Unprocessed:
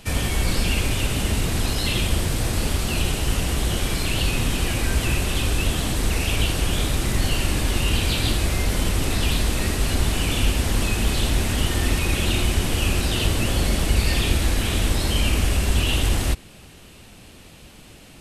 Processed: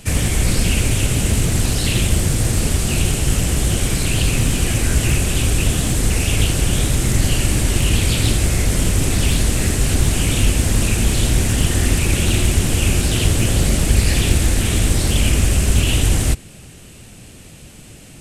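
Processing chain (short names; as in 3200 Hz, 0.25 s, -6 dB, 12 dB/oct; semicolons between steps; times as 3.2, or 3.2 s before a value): graphic EQ 125/1000/4000/8000 Hz +5/-5/-4/+7 dB; Doppler distortion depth 0.47 ms; gain +4 dB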